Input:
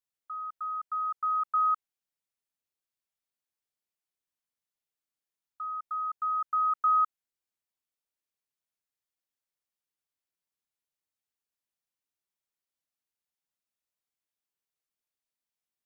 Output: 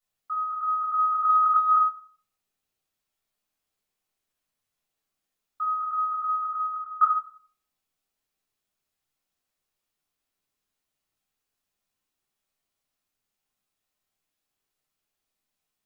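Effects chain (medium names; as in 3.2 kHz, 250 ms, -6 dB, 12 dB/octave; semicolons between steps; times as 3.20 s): 5.72–7.01 s: fade out; simulated room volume 570 m³, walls furnished, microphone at 6.6 m; 1.29–1.73 s: compressor with a negative ratio -19 dBFS, ratio -0.5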